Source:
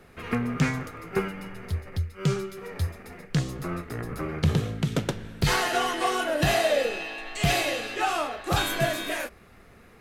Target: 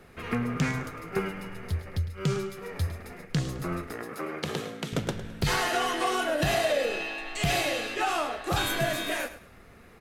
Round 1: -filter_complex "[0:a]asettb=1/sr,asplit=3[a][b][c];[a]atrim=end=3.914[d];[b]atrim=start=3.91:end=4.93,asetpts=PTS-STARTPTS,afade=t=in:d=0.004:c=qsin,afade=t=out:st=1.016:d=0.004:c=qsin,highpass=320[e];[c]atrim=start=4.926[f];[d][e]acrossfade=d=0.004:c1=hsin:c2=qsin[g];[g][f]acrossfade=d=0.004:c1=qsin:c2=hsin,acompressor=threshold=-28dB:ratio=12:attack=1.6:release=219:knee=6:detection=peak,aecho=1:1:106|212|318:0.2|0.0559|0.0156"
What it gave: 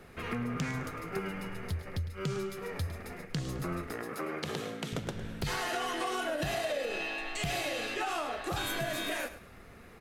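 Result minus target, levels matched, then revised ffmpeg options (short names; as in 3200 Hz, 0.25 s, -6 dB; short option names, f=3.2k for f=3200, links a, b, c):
compressor: peak gain reduction +8.5 dB
-filter_complex "[0:a]asettb=1/sr,asplit=3[a][b][c];[a]atrim=end=3.914[d];[b]atrim=start=3.91:end=4.93,asetpts=PTS-STARTPTS,afade=t=in:d=0.004:c=qsin,afade=t=out:st=1.016:d=0.004:c=qsin,highpass=320[e];[c]atrim=start=4.926[f];[d][e]acrossfade=d=0.004:c1=hsin:c2=qsin[g];[g][f]acrossfade=d=0.004:c1=qsin:c2=hsin,acompressor=threshold=-18.5dB:ratio=12:attack=1.6:release=219:knee=6:detection=peak,aecho=1:1:106|212|318:0.2|0.0559|0.0156"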